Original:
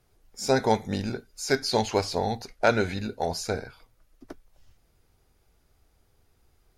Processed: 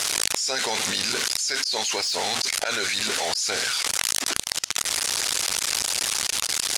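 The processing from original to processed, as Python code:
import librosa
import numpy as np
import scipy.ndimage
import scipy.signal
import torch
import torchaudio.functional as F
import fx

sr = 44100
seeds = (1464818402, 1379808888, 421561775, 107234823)

p1 = x + 0.5 * 10.0 ** (-27.0 / 20.0) * np.sign(x)
p2 = fx.weighting(p1, sr, curve='ITU-R 468')
p3 = fx.hpss(p2, sr, part='percussive', gain_db=6)
p4 = fx.dynamic_eq(p3, sr, hz=850.0, q=1.6, threshold_db=-36.0, ratio=4.0, max_db=-3)
p5 = fx.auto_swell(p4, sr, attack_ms=448.0)
p6 = 10.0 ** (-12.5 / 20.0) * (np.abs((p5 / 10.0 ** (-12.5 / 20.0) + 3.0) % 4.0 - 2.0) - 1.0)
p7 = p5 + (p6 * 10.0 ** (-9.0 / 20.0))
p8 = fx.env_flatten(p7, sr, amount_pct=100)
y = p8 * 10.0 ** (-15.5 / 20.0)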